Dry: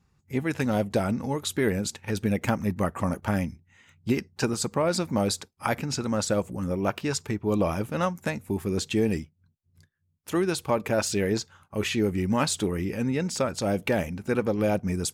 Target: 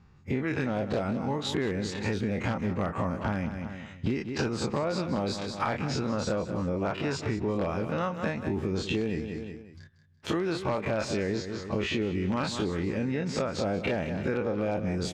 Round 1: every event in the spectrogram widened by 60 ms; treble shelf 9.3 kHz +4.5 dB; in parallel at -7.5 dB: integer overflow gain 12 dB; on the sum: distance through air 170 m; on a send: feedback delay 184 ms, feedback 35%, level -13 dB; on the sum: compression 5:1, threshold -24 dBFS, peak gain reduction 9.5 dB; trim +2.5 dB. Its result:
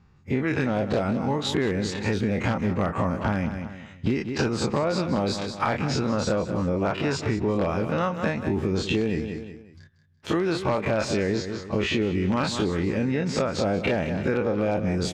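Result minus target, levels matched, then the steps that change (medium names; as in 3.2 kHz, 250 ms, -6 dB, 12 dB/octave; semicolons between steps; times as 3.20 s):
compression: peak gain reduction -5 dB
change: compression 5:1, threshold -30 dBFS, peak gain reduction 14 dB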